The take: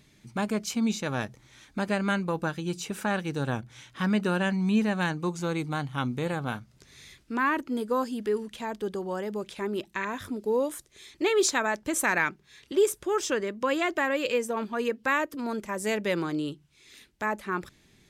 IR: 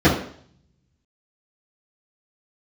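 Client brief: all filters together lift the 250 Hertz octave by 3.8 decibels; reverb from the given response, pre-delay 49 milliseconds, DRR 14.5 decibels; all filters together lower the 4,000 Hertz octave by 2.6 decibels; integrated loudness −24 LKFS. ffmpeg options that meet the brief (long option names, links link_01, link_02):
-filter_complex "[0:a]equalizer=frequency=250:width_type=o:gain=5,equalizer=frequency=4000:width_type=o:gain=-3.5,asplit=2[link_01][link_02];[1:a]atrim=start_sample=2205,adelay=49[link_03];[link_02][link_03]afir=irnorm=-1:irlink=0,volume=-37.5dB[link_04];[link_01][link_04]amix=inputs=2:normalize=0,volume=2.5dB"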